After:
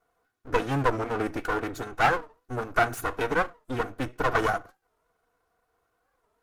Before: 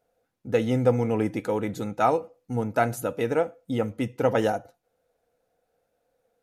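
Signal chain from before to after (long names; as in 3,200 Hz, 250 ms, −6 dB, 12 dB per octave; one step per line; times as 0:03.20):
lower of the sound and its delayed copy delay 2.7 ms
parametric band 1,400 Hz +9.5 dB 0.52 octaves
wow of a warped record 45 rpm, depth 160 cents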